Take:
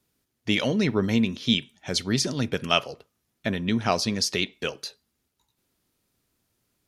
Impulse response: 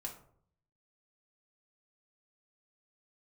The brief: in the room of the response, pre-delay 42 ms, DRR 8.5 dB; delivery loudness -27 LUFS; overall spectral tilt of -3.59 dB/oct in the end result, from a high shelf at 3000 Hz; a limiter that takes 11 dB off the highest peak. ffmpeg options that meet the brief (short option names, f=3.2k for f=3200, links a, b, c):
-filter_complex "[0:a]highshelf=f=3k:g=8,alimiter=limit=-13.5dB:level=0:latency=1,asplit=2[a][b];[1:a]atrim=start_sample=2205,adelay=42[c];[b][c]afir=irnorm=-1:irlink=0,volume=-6.5dB[d];[a][d]amix=inputs=2:normalize=0,volume=-1dB"